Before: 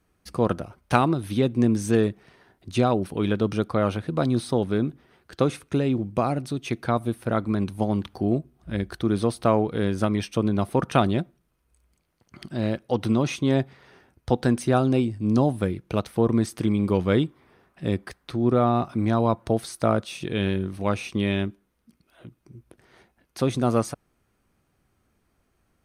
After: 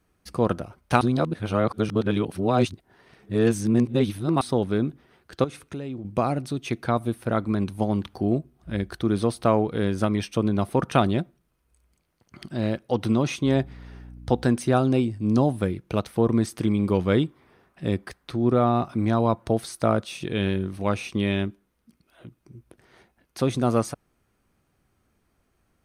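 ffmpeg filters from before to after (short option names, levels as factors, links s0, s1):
-filter_complex "[0:a]asettb=1/sr,asplit=3[s0][s1][s2];[s0]atrim=end=5.444[s3];[s1]atrim=start=5.44:end=6.05,asetpts=PTS-STARTPTS,afade=t=in:d=0.004:c=qsin,afade=t=out:st=0.606:d=0.004:c=qsin,acompressor=threshold=0.0126:ratio=2:attack=3.2:release=140:knee=1:detection=peak[s4];[s2]atrim=start=6.046[s5];[s3][s4]acrossfade=d=0.004:c1=hsin:c2=qsin[s6];[s6][s5]acrossfade=d=0.004:c1=qsin:c2=hsin,asettb=1/sr,asplit=3[s7][s8][s9];[s7]atrim=end=13.454[s10];[s8]atrim=start=13.45:end=14.44,asetpts=PTS-STARTPTS,afade=t=in:d=0.004:c=qsin,afade=t=out:st=0.986:d=0.004:c=qsin,aeval=exprs='val(0)+0.00891*(sin(2*PI*60*n/s)+sin(2*PI*2*60*n/s)/2+sin(2*PI*3*60*n/s)/3+sin(2*PI*4*60*n/s)/4+sin(2*PI*5*60*n/s)/5)':c=same[s11];[s9]atrim=start=14.436[s12];[s10][s11]acrossfade=d=0.004:c1=hsin:c2=qsin[s13];[s13][s12]acrossfade=d=0.004:c1=qsin:c2=hsin,asplit=3[s14][s15][s16];[s14]atrim=end=1.012[s17];[s15]atrim=start=1.008:end=4.412,asetpts=PTS-STARTPTS,areverse[s18];[s16]atrim=start=4.408[s19];[s17][s18]acrossfade=d=0.004:c1=hsin:c2=hsin[s20];[s20][s19]acrossfade=d=0.004:c1=hsin:c2=hsin"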